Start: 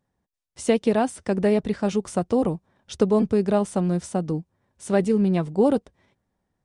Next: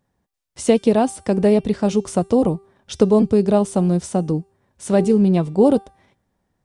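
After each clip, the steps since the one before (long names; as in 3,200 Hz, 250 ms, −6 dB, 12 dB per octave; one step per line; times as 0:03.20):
hum removal 392.1 Hz, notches 30
dynamic equaliser 1,700 Hz, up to −7 dB, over −43 dBFS, Q 1.2
level +5.5 dB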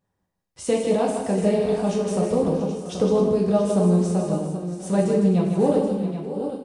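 on a send: multi-tap delay 157/260/635/682/780 ms −6.5/−13/−17.5/−13/−9.5 dB
on the sum: coupled-rooms reverb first 0.53 s, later 2.3 s, DRR −2.5 dB
level −9 dB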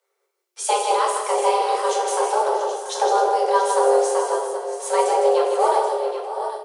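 sub-octave generator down 2 octaves, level +2 dB
frequency shifter +360 Hz
tilt shelving filter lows −7 dB, about 1,100 Hz
level +2 dB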